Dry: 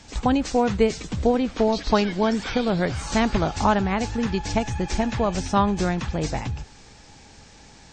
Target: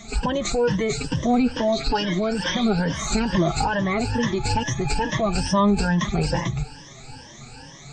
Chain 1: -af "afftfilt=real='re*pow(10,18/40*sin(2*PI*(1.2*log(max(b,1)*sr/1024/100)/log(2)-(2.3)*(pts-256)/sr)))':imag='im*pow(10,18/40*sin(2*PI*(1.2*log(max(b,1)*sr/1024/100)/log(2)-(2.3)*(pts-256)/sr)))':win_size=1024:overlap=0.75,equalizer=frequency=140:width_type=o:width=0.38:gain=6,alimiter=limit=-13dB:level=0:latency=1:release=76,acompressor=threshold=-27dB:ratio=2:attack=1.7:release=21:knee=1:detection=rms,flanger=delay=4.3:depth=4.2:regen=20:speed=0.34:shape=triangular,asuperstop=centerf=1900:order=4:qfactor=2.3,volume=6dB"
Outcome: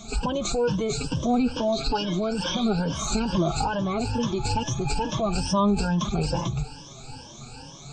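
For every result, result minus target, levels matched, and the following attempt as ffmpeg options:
2,000 Hz band −5.0 dB; downward compressor: peak gain reduction +3 dB
-af "afftfilt=real='re*pow(10,18/40*sin(2*PI*(1.2*log(max(b,1)*sr/1024/100)/log(2)-(2.3)*(pts-256)/sr)))':imag='im*pow(10,18/40*sin(2*PI*(1.2*log(max(b,1)*sr/1024/100)/log(2)-(2.3)*(pts-256)/sr)))':win_size=1024:overlap=0.75,equalizer=frequency=140:width_type=o:width=0.38:gain=6,alimiter=limit=-13dB:level=0:latency=1:release=76,acompressor=threshold=-27dB:ratio=2:attack=1.7:release=21:knee=1:detection=rms,flanger=delay=4.3:depth=4.2:regen=20:speed=0.34:shape=triangular,volume=6dB"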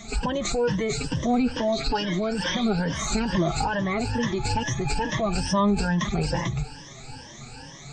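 downward compressor: peak gain reduction +3 dB
-af "afftfilt=real='re*pow(10,18/40*sin(2*PI*(1.2*log(max(b,1)*sr/1024/100)/log(2)-(2.3)*(pts-256)/sr)))':imag='im*pow(10,18/40*sin(2*PI*(1.2*log(max(b,1)*sr/1024/100)/log(2)-(2.3)*(pts-256)/sr)))':win_size=1024:overlap=0.75,equalizer=frequency=140:width_type=o:width=0.38:gain=6,alimiter=limit=-13dB:level=0:latency=1:release=76,acompressor=threshold=-21dB:ratio=2:attack=1.7:release=21:knee=1:detection=rms,flanger=delay=4.3:depth=4.2:regen=20:speed=0.34:shape=triangular,volume=6dB"

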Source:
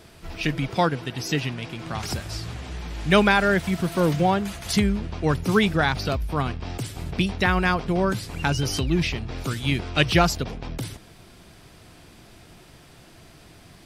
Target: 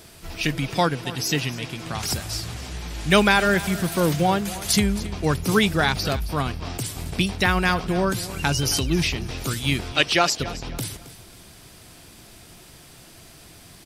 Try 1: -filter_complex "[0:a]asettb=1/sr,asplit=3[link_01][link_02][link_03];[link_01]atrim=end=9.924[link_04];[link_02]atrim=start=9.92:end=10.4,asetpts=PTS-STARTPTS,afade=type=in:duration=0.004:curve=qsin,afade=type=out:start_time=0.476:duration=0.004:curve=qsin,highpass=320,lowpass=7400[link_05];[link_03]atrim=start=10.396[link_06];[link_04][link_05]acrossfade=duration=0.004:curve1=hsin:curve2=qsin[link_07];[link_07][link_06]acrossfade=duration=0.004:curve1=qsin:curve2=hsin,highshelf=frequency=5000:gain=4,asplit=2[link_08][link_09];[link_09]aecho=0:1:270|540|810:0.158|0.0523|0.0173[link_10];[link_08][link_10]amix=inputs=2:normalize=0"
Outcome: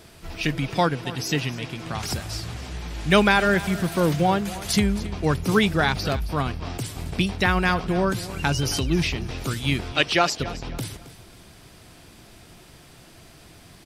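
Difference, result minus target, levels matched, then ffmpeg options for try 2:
8,000 Hz band −4.0 dB
-filter_complex "[0:a]asettb=1/sr,asplit=3[link_01][link_02][link_03];[link_01]atrim=end=9.924[link_04];[link_02]atrim=start=9.92:end=10.4,asetpts=PTS-STARTPTS,afade=type=in:duration=0.004:curve=qsin,afade=type=out:start_time=0.476:duration=0.004:curve=qsin,highpass=320,lowpass=7400[link_05];[link_03]atrim=start=10.396[link_06];[link_04][link_05]acrossfade=duration=0.004:curve1=hsin:curve2=qsin[link_07];[link_07][link_06]acrossfade=duration=0.004:curve1=qsin:curve2=hsin,highshelf=frequency=5000:gain=11.5,asplit=2[link_08][link_09];[link_09]aecho=0:1:270|540|810:0.158|0.0523|0.0173[link_10];[link_08][link_10]amix=inputs=2:normalize=0"

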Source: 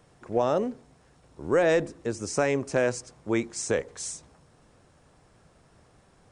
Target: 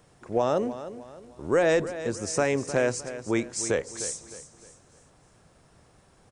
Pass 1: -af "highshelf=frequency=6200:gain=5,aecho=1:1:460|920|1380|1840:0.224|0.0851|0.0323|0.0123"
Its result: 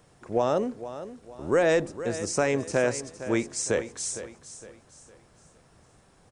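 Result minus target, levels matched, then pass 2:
echo 154 ms late
-af "highshelf=frequency=6200:gain=5,aecho=1:1:306|612|918|1224:0.224|0.0851|0.0323|0.0123"

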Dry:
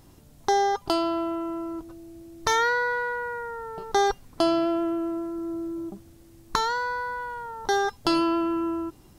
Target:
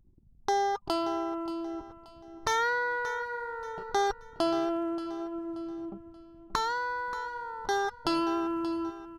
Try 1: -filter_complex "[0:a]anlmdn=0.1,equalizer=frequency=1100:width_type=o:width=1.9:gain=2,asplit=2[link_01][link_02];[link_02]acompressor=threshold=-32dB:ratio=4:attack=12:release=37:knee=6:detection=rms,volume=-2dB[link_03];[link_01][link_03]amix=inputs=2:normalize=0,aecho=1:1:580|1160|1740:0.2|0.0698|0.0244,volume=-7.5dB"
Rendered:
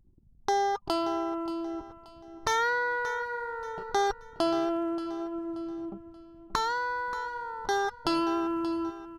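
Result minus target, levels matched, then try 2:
downward compressor: peak gain reduction −5.5 dB
-filter_complex "[0:a]anlmdn=0.1,equalizer=frequency=1100:width_type=o:width=1.9:gain=2,asplit=2[link_01][link_02];[link_02]acompressor=threshold=-39.5dB:ratio=4:attack=12:release=37:knee=6:detection=rms,volume=-2dB[link_03];[link_01][link_03]amix=inputs=2:normalize=0,aecho=1:1:580|1160|1740:0.2|0.0698|0.0244,volume=-7.5dB"

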